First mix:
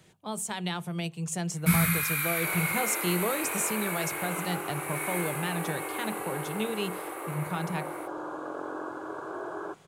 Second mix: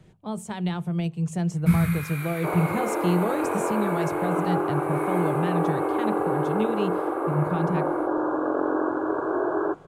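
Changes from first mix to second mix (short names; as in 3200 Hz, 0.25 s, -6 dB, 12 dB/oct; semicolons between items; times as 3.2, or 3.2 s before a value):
first sound -3.0 dB; second sound +9.0 dB; master: add tilt -3 dB/oct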